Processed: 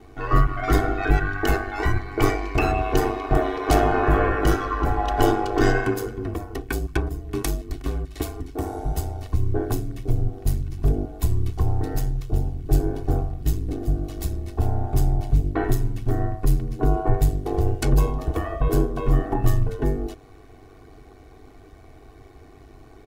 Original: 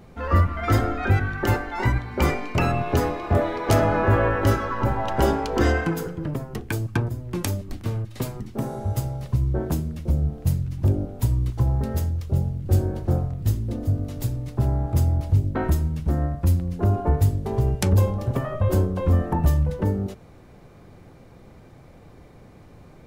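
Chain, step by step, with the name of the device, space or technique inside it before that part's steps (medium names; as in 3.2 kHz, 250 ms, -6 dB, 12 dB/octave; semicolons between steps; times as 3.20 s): ring-modulated robot voice (ring modulator 49 Hz; comb 2.7 ms, depth 89%); trim +1.5 dB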